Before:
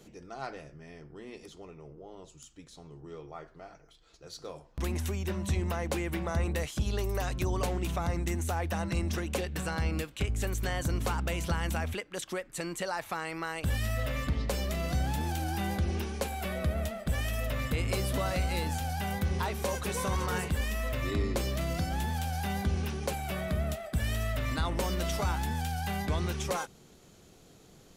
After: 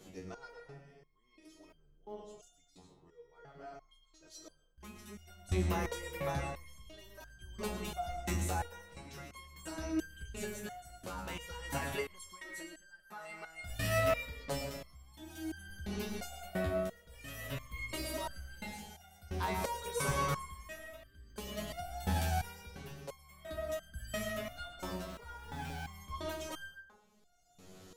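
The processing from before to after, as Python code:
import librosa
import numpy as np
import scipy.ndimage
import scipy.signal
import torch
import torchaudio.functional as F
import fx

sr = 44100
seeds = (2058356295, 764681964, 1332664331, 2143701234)

y = fx.median_filter(x, sr, points=9, at=(25.04, 25.93))
y = y * (1.0 - 0.77 / 2.0 + 0.77 / 2.0 * np.cos(2.0 * np.pi * 0.5 * (np.arange(len(y)) / sr)))
y = fx.rev_freeverb(y, sr, rt60_s=0.79, hf_ratio=0.5, predelay_ms=75, drr_db=5.5)
y = fx.buffer_crackle(y, sr, first_s=0.5, period_s=0.4, block=64, kind='zero')
y = fx.resonator_held(y, sr, hz=2.9, low_hz=93.0, high_hz=1600.0)
y = y * librosa.db_to_amplitude(10.5)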